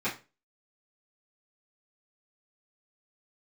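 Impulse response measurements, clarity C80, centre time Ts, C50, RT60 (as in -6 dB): 17.5 dB, 21 ms, 11.0 dB, 0.30 s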